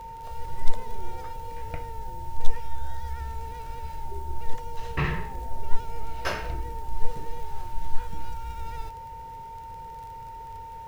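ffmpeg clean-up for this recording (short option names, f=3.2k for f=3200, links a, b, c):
-af "adeclick=t=4,bandreject=f=910:w=30"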